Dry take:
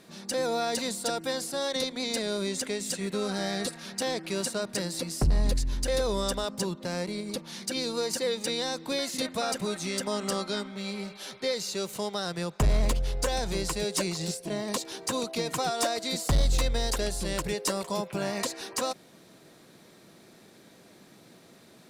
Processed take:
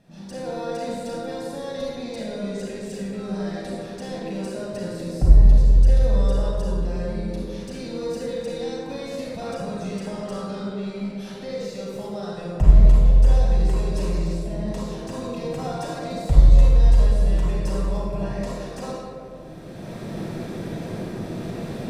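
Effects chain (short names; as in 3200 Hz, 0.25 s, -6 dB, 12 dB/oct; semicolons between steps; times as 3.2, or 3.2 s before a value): recorder AGC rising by 20 dB/s; tilt -2.5 dB/oct; reverb RT60 2.6 s, pre-delay 32 ms, DRR -4.5 dB; gain -11 dB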